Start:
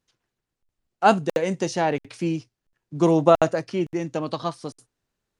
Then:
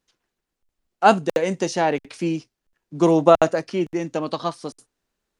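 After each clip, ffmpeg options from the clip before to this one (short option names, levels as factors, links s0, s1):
-af "equalizer=f=110:w=2.1:g=-12,volume=1.33"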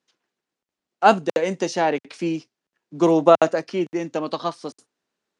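-af "highpass=180,lowpass=7400"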